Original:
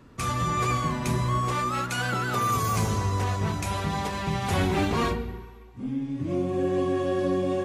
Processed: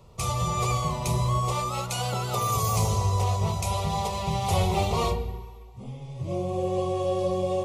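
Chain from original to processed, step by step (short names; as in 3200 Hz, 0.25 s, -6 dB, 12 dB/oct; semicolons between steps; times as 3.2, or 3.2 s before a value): fixed phaser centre 670 Hz, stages 4; gain +4 dB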